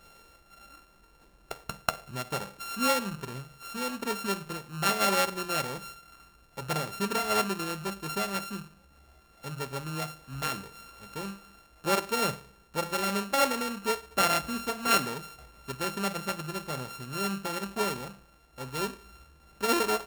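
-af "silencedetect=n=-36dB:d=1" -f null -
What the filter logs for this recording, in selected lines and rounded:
silence_start: 0.00
silence_end: 1.51 | silence_duration: 1.51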